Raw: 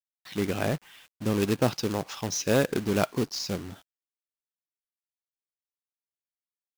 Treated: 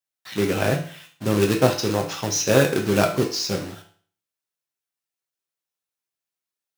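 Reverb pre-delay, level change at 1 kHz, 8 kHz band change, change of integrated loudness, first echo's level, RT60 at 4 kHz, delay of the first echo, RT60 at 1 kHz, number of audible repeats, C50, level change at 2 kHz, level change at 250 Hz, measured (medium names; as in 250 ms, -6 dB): 6 ms, +6.5 dB, +7.5 dB, +6.5 dB, no echo, 0.45 s, no echo, 0.45 s, no echo, 9.0 dB, +7.5 dB, +5.0 dB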